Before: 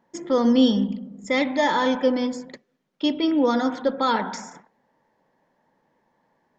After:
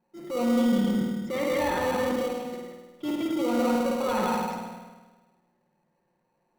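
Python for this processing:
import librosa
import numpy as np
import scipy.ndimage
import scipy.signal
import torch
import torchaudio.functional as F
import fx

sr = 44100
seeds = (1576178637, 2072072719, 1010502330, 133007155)

p1 = scipy.signal.sosfilt(scipy.signal.butter(2, 4900.0, 'lowpass', fs=sr, output='sos'), x)
p2 = p1 + 0.89 * np.pad(p1, (int(5.6 * sr / 1000.0), 0))[:len(p1)]
p3 = p2 + 10.0 ** (-3.5 / 20.0) * np.pad(p2, (int(171 * sr / 1000.0), 0))[:len(p2)]
p4 = fx.level_steps(p3, sr, step_db=12)
p5 = fx.high_shelf(p4, sr, hz=2700.0, db=-11.0)
p6 = fx.rev_spring(p5, sr, rt60_s=1.3, pass_ms=(51,), chirp_ms=75, drr_db=1.0)
p7 = fx.transient(p6, sr, attack_db=-6, sustain_db=3)
p8 = fx.sample_hold(p7, sr, seeds[0], rate_hz=1700.0, jitter_pct=0)
p9 = p7 + (p8 * librosa.db_to_amplitude(-5.5))
y = p9 * librosa.db_to_amplitude(-4.5)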